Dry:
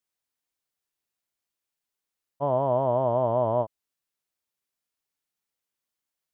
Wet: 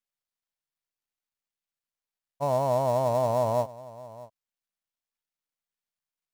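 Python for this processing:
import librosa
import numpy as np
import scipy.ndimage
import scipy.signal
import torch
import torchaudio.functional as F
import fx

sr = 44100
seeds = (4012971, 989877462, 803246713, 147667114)

y = fx.dead_time(x, sr, dead_ms=0.073)
y = fx.peak_eq(y, sr, hz=350.0, db=-9.0, octaves=0.54)
y = y + 10.0 ** (-18.5 / 20.0) * np.pad(y, (int(631 * sr / 1000.0), 0))[:len(y)]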